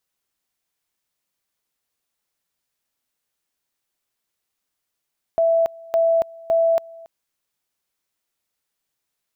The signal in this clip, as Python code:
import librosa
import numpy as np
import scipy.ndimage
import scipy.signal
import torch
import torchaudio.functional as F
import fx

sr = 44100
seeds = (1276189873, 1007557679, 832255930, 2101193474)

y = fx.two_level_tone(sr, hz=662.0, level_db=-14.0, drop_db=23.5, high_s=0.28, low_s=0.28, rounds=3)